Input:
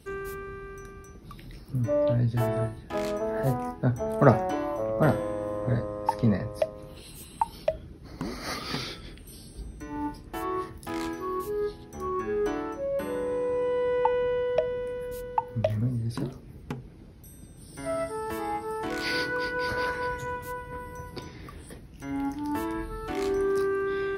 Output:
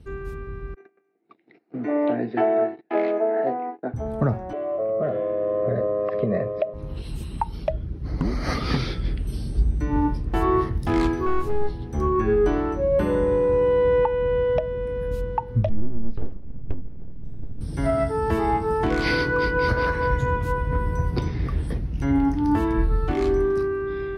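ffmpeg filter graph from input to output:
-filter_complex "[0:a]asettb=1/sr,asplit=3[a][b][c];[a]atrim=end=0.744[d];[b]atrim=start=0.74:end=3.94,asetpts=PTS-STARTPTS,afade=t=in:d=0.004:c=qsin,afade=t=out:st=3.196:d=0.004:c=qsin,agate=range=-27dB:threshold=-41dB:ratio=16:release=100:detection=peak,highpass=f=310:w=0.5412,highpass=f=310:w=1.3066,equalizer=f=340:t=q:w=4:g=5,equalizer=f=700:t=q:w=4:g=9,equalizer=f=1.1k:t=q:w=4:g=-7,equalizer=f=2.1k:t=q:w=4:g=6,equalizer=f=3.3k:t=q:w=4:g=-6,lowpass=f=3.5k:w=0.5412,lowpass=f=3.5k:w=1.3066,bandreject=f=580:w=8[e];[c]atrim=start=3.936[f];[d][e]acrossfade=d=0.004:c1=hsin:c2=qsin[g];[g][f]acrossfade=d=0.004:c1=qsin:c2=hsin,asettb=1/sr,asplit=3[h][i][j];[h]atrim=end=4.534[k];[i]atrim=start=4.53:end=6.74,asetpts=PTS-STARTPTS,afade=t=in:d=0.004:c=qsin,afade=t=out:st=2.206:d=0.004:c=qsin,acompressor=threshold=-23dB:ratio=6:attack=3.2:release=140:knee=1:detection=peak,asuperstop=centerf=880:order=12:qfactor=3.4,highpass=250,equalizer=f=270:t=q:w=4:g=-10,equalizer=f=410:t=q:w=4:g=6,equalizer=f=610:t=q:w=4:g=9,equalizer=f=1.5k:t=q:w=4:g=-4,lowpass=f=3.2k:w=0.5412,lowpass=f=3.2k:w=1.3066[l];[j]atrim=start=6.736[m];[k][l]acrossfade=d=0.004:c1=hsin:c2=qsin[n];[n][m]acrossfade=d=0.004:c1=qsin:c2=hsin,asettb=1/sr,asplit=3[o][p][q];[o]atrim=end=11.264[r];[p]atrim=start=11.26:end=11.88,asetpts=PTS-STARTPTS,afade=t=in:d=0.004:c=qsin,afade=t=out:st=0.616:d=0.004:c=qsin,highpass=41,aeval=exprs='clip(val(0),-1,0.0168)':c=same,asplit=2[s][t];[t]adelay=18,volume=-12dB[u];[s][u]amix=inputs=2:normalize=0,atrim=end_sample=27342[v];[q]atrim=start=11.876[w];[r][v]acrossfade=d=0.004:c1=hsin:c2=qsin[x];[x][w]acrossfade=d=0.004:c1=qsin:c2=hsin,asettb=1/sr,asplit=3[y][z][aa];[y]atrim=end=15.694[ab];[z]atrim=start=15.69:end=17.61,asetpts=PTS-STARTPTS,afade=t=in:d=0.004:c=qsin,afade=t=out:st=1.916:d=0.004:c=qsin,lowpass=2.1k,equalizer=f=890:w=0.41:g=-13.5,aeval=exprs='abs(val(0))':c=same[ac];[aa]atrim=start=17.606[ad];[ab][ac]acrossfade=d=0.004:c1=hsin:c2=qsin[ae];[ae][ad]acrossfade=d=0.004:c1=qsin:c2=hsin,aemphasis=mode=reproduction:type=bsi,dynaudnorm=f=140:g=17:m=11.5dB,alimiter=limit=-9.5dB:level=0:latency=1:release=487,volume=-2dB"

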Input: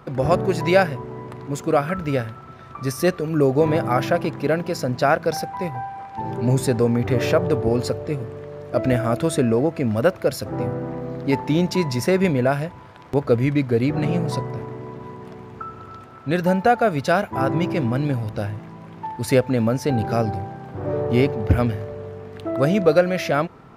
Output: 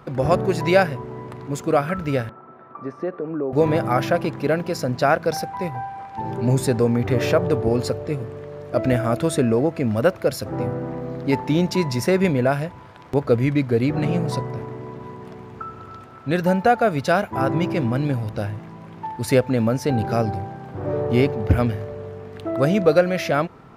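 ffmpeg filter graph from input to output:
-filter_complex "[0:a]asettb=1/sr,asplit=3[a][b][c];[a]atrim=end=2.294[d];[b]atrim=start=2.29:end=3.53,asetpts=PTS-STARTPTS,afade=t=in:d=0.004:c=qsin,afade=t=out:st=1.236:d=0.004:c=qsin,acompressor=threshold=-20dB:ratio=6:attack=3.2:release=140:knee=1:detection=peak,asuperpass=centerf=560:order=4:qfactor=0.5[e];[c]atrim=start=3.526[f];[d][e]acrossfade=d=0.004:c1=hsin:c2=qsin[g];[g][f]acrossfade=d=0.004:c1=qsin:c2=hsin"

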